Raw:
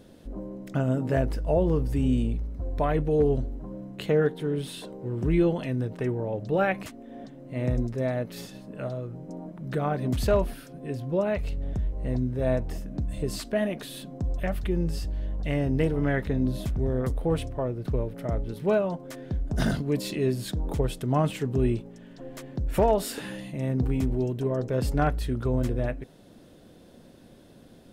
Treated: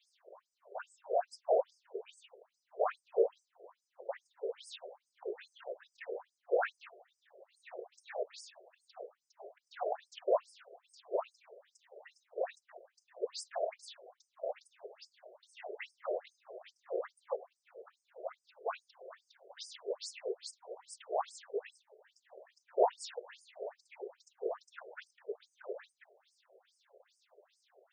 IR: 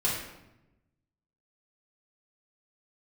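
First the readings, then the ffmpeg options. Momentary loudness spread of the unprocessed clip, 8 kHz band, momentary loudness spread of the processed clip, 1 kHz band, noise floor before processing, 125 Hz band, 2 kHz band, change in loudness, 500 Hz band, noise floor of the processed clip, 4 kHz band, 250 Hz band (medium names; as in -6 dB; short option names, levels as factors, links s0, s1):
13 LU, -10.5 dB, 23 LU, -7.0 dB, -52 dBFS, under -40 dB, -12.0 dB, -11.5 dB, -9.5 dB, -85 dBFS, -10.0 dB, under -25 dB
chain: -af "afftfilt=real='hypot(re,im)*cos(2*PI*random(0))':imag='hypot(re,im)*sin(2*PI*random(1))':win_size=512:overlap=0.75,afftfilt=real='re*between(b*sr/1024,500*pow(6900/500,0.5+0.5*sin(2*PI*2.4*pts/sr))/1.41,500*pow(6900/500,0.5+0.5*sin(2*PI*2.4*pts/sr))*1.41)':imag='im*between(b*sr/1024,500*pow(6900/500,0.5+0.5*sin(2*PI*2.4*pts/sr))/1.41,500*pow(6900/500,0.5+0.5*sin(2*PI*2.4*pts/sr))*1.41)':win_size=1024:overlap=0.75,volume=1.33"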